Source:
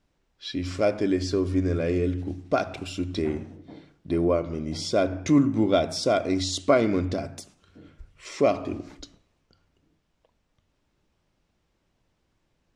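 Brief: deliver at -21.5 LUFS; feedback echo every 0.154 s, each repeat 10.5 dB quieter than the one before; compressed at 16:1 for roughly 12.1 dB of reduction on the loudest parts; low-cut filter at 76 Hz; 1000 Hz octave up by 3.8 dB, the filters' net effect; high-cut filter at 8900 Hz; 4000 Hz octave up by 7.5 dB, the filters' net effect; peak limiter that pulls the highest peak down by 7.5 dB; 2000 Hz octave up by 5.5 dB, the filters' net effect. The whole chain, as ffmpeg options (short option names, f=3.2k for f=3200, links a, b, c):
-af "highpass=76,lowpass=8.9k,equalizer=f=1k:t=o:g=4.5,equalizer=f=2k:t=o:g=3.5,equalizer=f=4k:t=o:g=8.5,acompressor=threshold=-25dB:ratio=16,alimiter=limit=-21.5dB:level=0:latency=1,aecho=1:1:154|308|462:0.299|0.0896|0.0269,volume=10.5dB"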